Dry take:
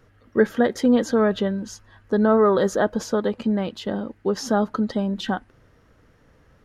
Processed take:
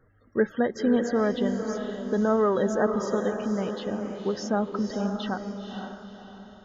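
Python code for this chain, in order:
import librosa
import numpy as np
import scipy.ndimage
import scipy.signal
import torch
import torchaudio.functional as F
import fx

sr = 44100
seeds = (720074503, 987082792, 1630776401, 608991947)

y = fx.spec_topn(x, sr, count=64)
y = fx.echo_diffused(y, sr, ms=508, feedback_pct=41, wet_db=-6.0)
y = y * 10.0 ** (-5.5 / 20.0)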